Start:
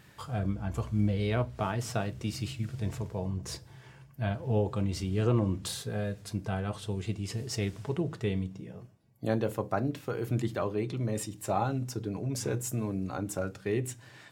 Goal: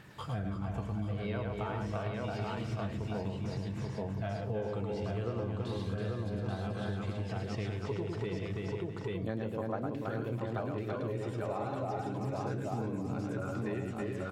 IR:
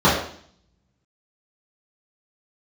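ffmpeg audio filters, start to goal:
-filter_complex "[0:a]asplit=2[a][b];[b]adelay=327,lowpass=f=4k:p=1,volume=-4dB,asplit=2[c][d];[d]adelay=327,lowpass=f=4k:p=1,volume=0.32,asplit=2[e][f];[f]adelay=327,lowpass=f=4k:p=1,volume=0.32,asplit=2[g][h];[h]adelay=327,lowpass=f=4k:p=1,volume=0.32[i];[c][e][g][i]amix=inputs=4:normalize=0[j];[a][j]amix=inputs=2:normalize=0,aphaser=in_gain=1:out_gain=1:delay=2.3:decay=0.31:speed=0.31:type=triangular,lowshelf=f=160:g=-4.5,asplit=2[k][l];[l]aecho=0:1:108|835:0.596|0.668[m];[k][m]amix=inputs=2:normalize=0,acrossover=split=4200[n][o];[o]acompressor=threshold=-54dB:ratio=4:attack=1:release=60[p];[n][p]amix=inputs=2:normalize=0,highshelf=f=5.6k:g=-8.5,acompressor=threshold=-35dB:ratio=5,volume=2dB"

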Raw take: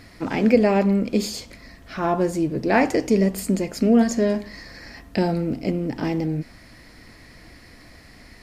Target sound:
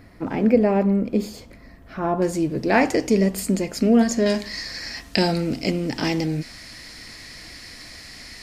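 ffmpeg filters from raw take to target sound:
-af "asetnsamples=n=441:p=0,asendcmd='2.22 equalizer g 3;4.26 equalizer g 14',equalizer=f=5.8k:t=o:w=2.9:g=-11"

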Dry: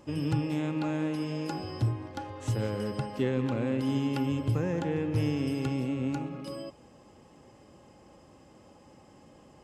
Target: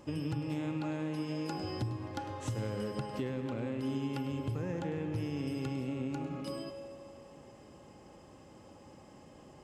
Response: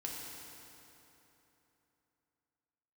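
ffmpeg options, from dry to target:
-filter_complex "[0:a]acompressor=threshold=-33dB:ratio=6,asplit=2[a][b];[1:a]atrim=start_sample=2205,asetrate=57330,aresample=44100,adelay=102[c];[b][c]afir=irnorm=-1:irlink=0,volume=-8dB[d];[a][d]amix=inputs=2:normalize=0"

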